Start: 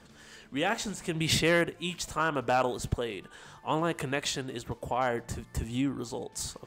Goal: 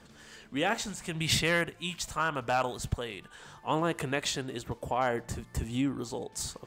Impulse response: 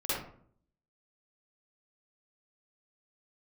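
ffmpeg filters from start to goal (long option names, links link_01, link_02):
-filter_complex "[0:a]asettb=1/sr,asplit=3[link_01][link_02][link_03];[link_01]atrim=end=0.814[link_04];[link_02]atrim=start=0.81:end=3.4,asetpts=PTS-STARTPTS,afade=type=in:duration=0.004:curve=qsin,afade=type=out:start_time=2.586:duration=0.004:curve=qsin,equalizer=frequency=360:width=0.91:gain=-6.5[link_05];[link_03]atrim=start=3.396[link_06];[link_04][link_05]acrossfade=duration=0.004:curve1=hsin:curve2=qsin[link_07];[link_07][link_06]acrossfade=duration=0.004:curve1=qsin:curve2=hsin"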